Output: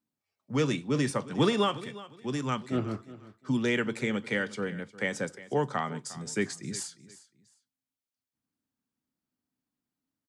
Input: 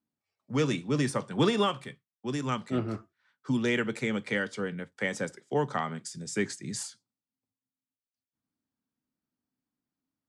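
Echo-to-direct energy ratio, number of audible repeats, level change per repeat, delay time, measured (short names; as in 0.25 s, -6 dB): -17.5 dB, 2, -12.0 dB, 0.356 s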